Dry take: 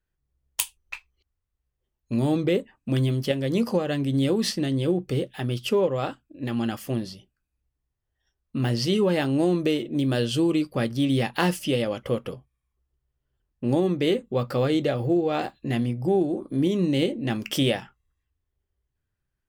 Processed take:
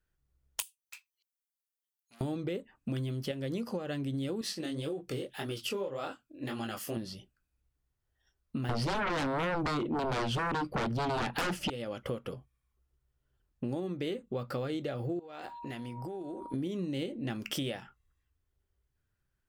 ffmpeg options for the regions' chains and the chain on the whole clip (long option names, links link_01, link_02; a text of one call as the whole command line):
ffmpeg -i in.wav -filter_complex "[0:a]asettb=1/sr,asplit=3[link_01][link_02][link_03];[link_01]atrim=end=0.624[link_04];[link_02]atrim=start=0.62:end=2.21,asetpts=PTS-STARTPTS,afade=type=in:duration=0.004:curve=qsin,afade=type=out:start_time=1.586:duration=0.004:curve=qsin,aeval=exprs='(tanh(39.8*val(0)+0.35)-tanh(0.35))/39.8':channel_layout=same,aderivative[link_05];[link_03]atrim=start=2.206[link_06];[link_04][link_05]acrossfade=duration=0.004:curve1=hsin:curve2=qsin[link_07];[link_07][link_06]acrossfade=duration=0.004:curve1=qsin:curve2=hsin,asettb=1/sr,asplit=3[link_08][link_09][link_10];[link_08]atrim=end=4.414[link_11];[link_09]atrim=start=4.41:end=6.97,asetpts=PTS-STARTPTS,afade=type=in:duration=0.004:curve=qsin,afade=type=out:start_time=2.556:duration=0.004:curve=qsin,bass=frequency=250:gain=-7,treble=frequency=4000:gain=4,flanger=delay=18.5:depth=7.2:speed=1.8[link_12];[link_10]atrim=start=6.966[link_13];[link_11][link_12]acrossfade=duration=0.004:curve1=hsin:curve2=qsin[link_14];[link_14][link_13]acrossfade=duration=0.004:curve1=qsin:curve2=hsin,asettb=1/sr,asplit=3[link_15][link_16][link_17];[link_15]atrim=end=8.694[link_18];[link_16]atrim=start=8.69:end=11.7,asetpts=PTS-STARTPTS,afade=type=in:duration=0.004:curve=qsin,afade=type=out:start_time=3.006:duration=0.004:curve=qsin,lowpass=frequency=1700:poles=1,aeval=exprs='0.355*sin(PI/2*7.08*val(0)/0.355)':channel_layout=same[link_19];[link_17]atrim=start=11.696[link_20];[link_18][link_19]acrossfade=duration=0.004:curve1=hsin:curve2=qsin[link_21];[link_21][link_20]acrossfade=duration=0.004:curve1=qsin:curve2=hsin,asettb=1/sr,asplit=3[link_22][link_23][link_24];[link_22]atrim=end=15.194[link_25];[link_23]atrim=start=15.19:end=16.54,asetpts=PTS-STARTPTS,afade=type=in:duration=0.004:curve=qsin,afade=type=out:start_time=1.346:duration=0.004:curve=qsin,equalizer=frequency=140:width_type=o:width=2.6:gain=-9,aeval=exprs='val(0)+0.00708*sin(2*PI*950*n/s)':channel_layout=same,acompressor=threshold=-36dB:ratio=12:attack=3.2:release=140:knee=1:detection=peak[link_26];[link_24]atrim=start=16.536[link_27];[link_25][link_26]acrossfade=duration=0.004:curve1=hsin:curve2=qsin[link_28];[link_28][link_27]acrossfade=duration=0.004:curve1=qsin:curve2=hsin,equalizer=frequency=1400:width=5.8:gain=4.5,acompressor=threshold=-33dB:ratio=6" out.wav